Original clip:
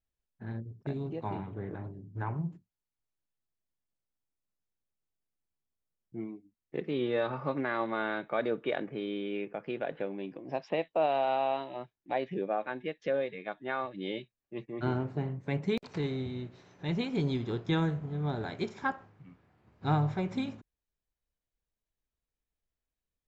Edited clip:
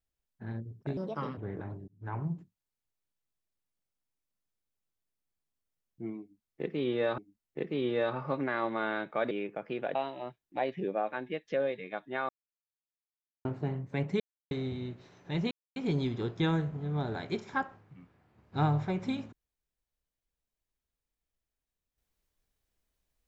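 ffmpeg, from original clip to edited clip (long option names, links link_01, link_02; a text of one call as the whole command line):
ffmpeg -i in.wav -filter_complex "[0:a]asplit=12[link_01][link_02][link_03][link_04][link_05][link_06][link_07][link_08][link_09][link_10][link_11][link_12];[link_01]atrim=end=0.974[link_13];[link_02]atrim=start=0.97:end=1.51,asetpts=PTS-STARTPTS,asetrate=59535,aresample=44100[link_14];[link_03]atrim=start=1.506:end=2.02,asetpts=PTS-STARTPTS,afade=type=out:start_time=0.51:duration=0.004:curve=hsin[link_15];[link_04]atrim=start=2.02:end=7.322,asetpts=PTS-STARTPTS,afade=type=in:duration=0.32[link_16];[link_05]atrim=start=6.348:end=8.482[link_17];[link_06]atrim=start=9.288:end=9.932[link_18];[link_07]atrim=start=11.488:end=13.83,asetpts=PTS-STARTPTS,afade=type=out:start_time=2.338:duration=0.004:curve=hsin[link_19];[link_08]atrim=start=13.83:end=14.99,asetpts=PTS-STARTPTS,volume=0[link_20];[link_09]atrim=start=14.99:end=15.74,asetpts=PTS-STARTPTS,afade=type=in:duration=0.004:curve=hsin,afade=type=out:start_time=0.746:duration=0.004:curve=hsin[link_21];[link_10]atrim=start=15.74:end=16.05,asetpts=PTS-STARTPTS,volume=0[link_22];[link_11]atrim=start=16.05:end=17.05,asetpts=PTS-STARTPTS,afade=type=in:duration=0.004:curve=hsin,afade=type=out:start_time=0.996:duration=0.004:curve=hsin,apad=pad_dur=0.25[link_23];[link_12]atrim=start=17.05,asetpts=PTS-STARTPTS,afade=type=in:duration=0.004:curve=hsin[link_24];[link_13][link_14]acrossfade=duration=0.004:curve1=hsin:curve2=hsin[link_25];[link_15][link_16]concat=n=2:v=0:a=1[link_26];[link_25][link_26]acrossfade=duration=0.004:curve1=hsin:curve2=hsin[link_27];[link_27][link_17]acrossfade=duration=0.004:curve1=hsin:curve2=hsin[link_28];[link_28][link_18]acrossfade=duration=0.004:curve1=hsin:curve2=hsin[link_29];[link_19][link_20][link_21][link_22][link_23][link_24]concat=n=6:v=0:a=1[link_30];[link_29][link_30]acrossfade=duration=0.004:curve1=hsin:curve2=hsin" out.wav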